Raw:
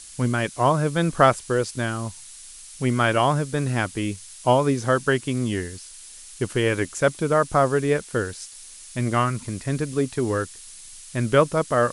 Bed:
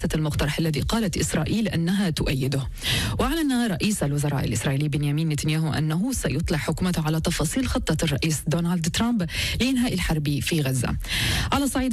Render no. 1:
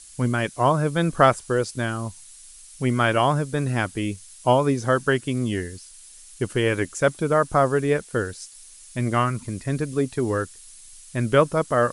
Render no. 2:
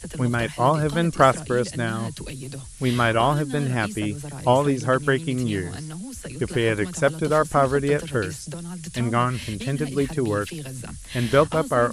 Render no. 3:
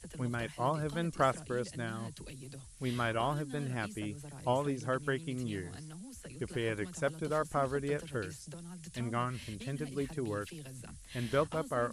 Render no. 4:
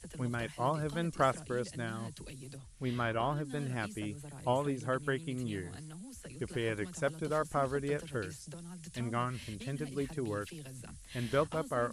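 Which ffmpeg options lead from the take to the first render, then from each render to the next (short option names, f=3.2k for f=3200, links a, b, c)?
-af "afftdn=nr=6:nf=-43"
-filter_complex "[1:a]volume=-11dB[a];[0:a][a]amix=inputs=2:normalize=0"
-af "volume=-13dB"
-filter_complex "[0:a]asettb=1/sr,asplit=3[a][b][c];[a]atrim=end=2.574[d];[b]atrim=start=2.57:end=3.45,asetpts=PTS-STARTPTS,afade=t=in:d=0.004:c=qsin,afade=t=out:st=0.876:d=0.004:c=qsin,highshelf=f=4.6k:g=-9.5[e];[c]atrim=start=3.446[f];[d][e]acrossfade=d=0.004:c1=hsin:c2=qsin[g];[g][f]acrossfade=d=0.004:c1=qsin:c2=hsin,asettb=1/sr,asplit=3[h][i][j];[h]atrim=end=4.144[k];[i]atrim=start=4.14:end=6.08,asetpts=PTS-STARTPTS,afade=t=in:d=0.004:c=qsin,afade=t=out:st=1.936:d=0.004:c=qsin,equalizer=f=5.5k:w=5.1:g=-7.5[l];[j]atrim=start=6.076[m];[k][l]acrossfade=d=0.004:c1=hsin:c2=qsin[n];[n][m]acrossfade=d=0.004:c1=qsin:c2=hsin"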